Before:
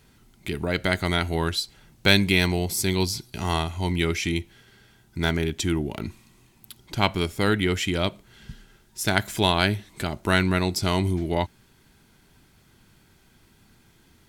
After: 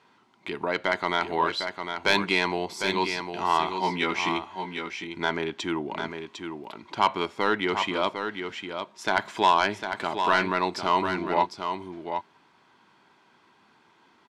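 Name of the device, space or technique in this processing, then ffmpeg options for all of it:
intercom: -filter_complex "[0:a]highpass=300,lowpass=3.9k,equalizer=f=1k:t=o:w=0.59:g=11.5,asoftclip=type=tanh:threshold=-9dB,asettb=1/sr,asplit=3[a][b][c];[a]atrim=end=3.664[d];[b]atrim=start=3.66:end=4.29,asetpts=PTS-STARTPTS,afade=t=in:d=0.004:c=qsin,afade=t=out:st=0.626:d=0.004:c=qsin,asplit=2[e][f];[f]adelay=16,volume=-2dB[g];[e][g]amix=inputs=2:normalize=0,atrim=end_sample=27783[h];[c]atrim=start=4.286[i];[d][h]acrossfade=d=0.004:c1=hsin:c2=qsin[j];[j][i]acrossfade=d=0.004:c1=qsin:c2=hsin,aecho=1:1:753:0.447,volume=-1dB"

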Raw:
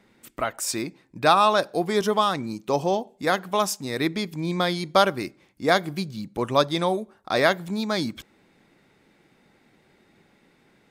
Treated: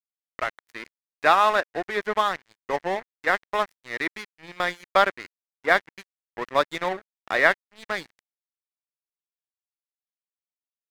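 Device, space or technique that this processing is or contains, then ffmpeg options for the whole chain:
pocket radio on a weak battery: -af "highpass=390,lowpass=3k,aeval=exprs='sgn(val(0))*max(abs(val(0))-0.0251,0)':c=same,equalizer=f=1.9k:t=o:w=0.59:g=9.5"

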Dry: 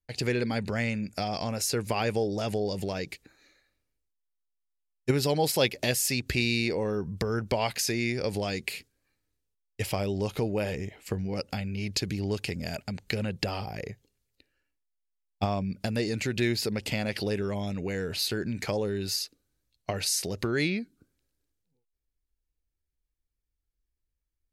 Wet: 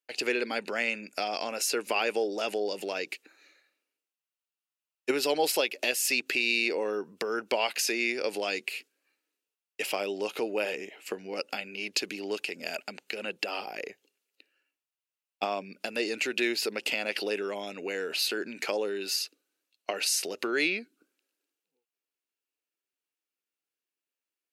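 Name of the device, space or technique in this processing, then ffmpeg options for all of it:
laptop speaker: -af "highpass=f=300:w=0.5412,highpass=f=300:w=1.3066,equalizer=f=1.4k:t=o:w=0.33:g=4,equalizer=f=2.7k:t=o:w=0.36:g=9,alimiter=limit=-15dB:level=0:latency=1:release=179"

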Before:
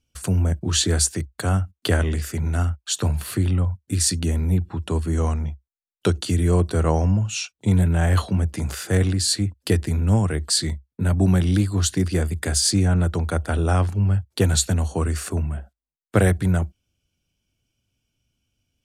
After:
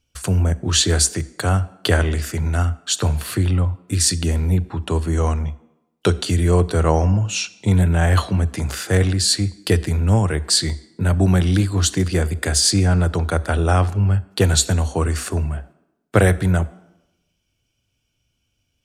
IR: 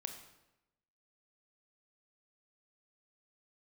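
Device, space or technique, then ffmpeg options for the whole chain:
filtered reverb send: -filter_complex "[0:a]asplit=2[a][b];[b]highpass=f=210:w=0.5412,highpass=f=210:w=1.3066,lowpass=8.1k[c];[1:a]atrim=start_sample=2205[d];[c][d]afir=irnorm=-1:irlink=0,volume=-6.5dB[e];[a][e]amix=inputs=2:normalize=0,volume=2.5dB"

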